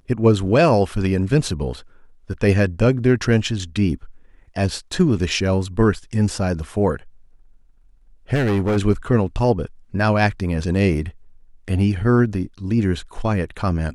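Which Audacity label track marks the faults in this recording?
8.340000	8.780000	clipped -16 dBFS

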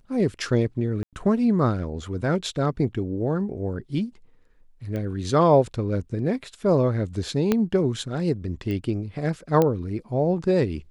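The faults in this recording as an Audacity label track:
1.030000	1.130000	gap 97 ms
4.960000	4.960000	pop -20 dBFS
7.520000	7.520000	pop -8 dBFS
8.710000	8.710000	pop -20 dBFS
9.620000	9.620000	pop -9 dBFS

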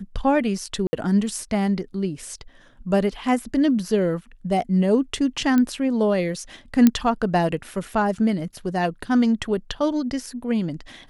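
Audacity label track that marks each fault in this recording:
0.870000	0.930000	gap 60 ms
5.580000	5.580000	pop -10 dBFS
6.870000	6.870000	pop -3 dBFS

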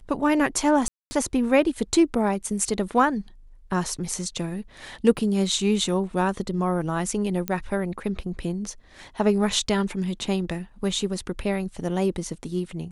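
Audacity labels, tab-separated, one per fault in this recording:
0.880000	1.110000	gap 0.23 s
5.170000	5.170000	gap 2.3 ms
7.480000	7.480000	pop -11 dBFS

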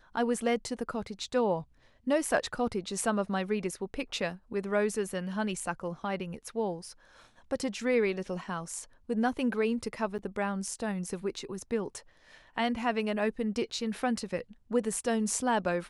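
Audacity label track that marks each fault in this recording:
10.180000	10.190000	gap 8 ms

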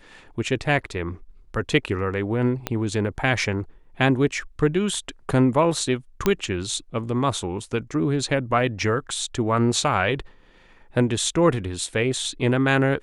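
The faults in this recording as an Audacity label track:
2.670000	2.670000	pop -9 dBFS
6.260000	6.260000	pop -6 dBFS

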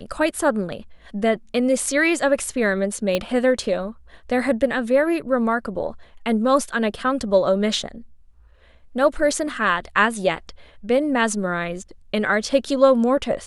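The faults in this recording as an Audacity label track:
3.150000	3.150000	pop -8 dBFS

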